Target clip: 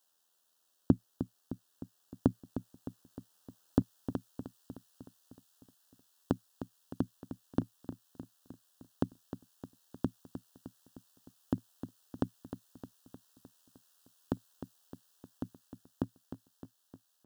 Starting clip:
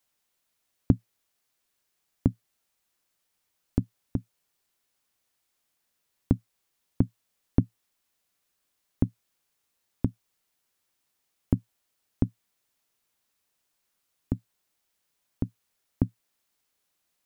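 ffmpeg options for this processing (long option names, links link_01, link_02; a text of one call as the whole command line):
ffmpeg -i in.wav -af "dynaudnorm=framelen=180:gausssize=21:maxgain=11.5dB,asetnsamples=nb_out_samples=441:pad=0,asendcmd='3.82 highpass f 1100',highpass=frequency=390:poles=1,tremolo=f=83:d=0.462,asuperstop=centerf=2200:order=4:qfactor=2,aecho=1:1:307|614|921|1228|1535|1842|2149:0.282|0.166|0.0981|0.0579|0.0342|0.0201|0.0119,volume=4.5dB" out.wav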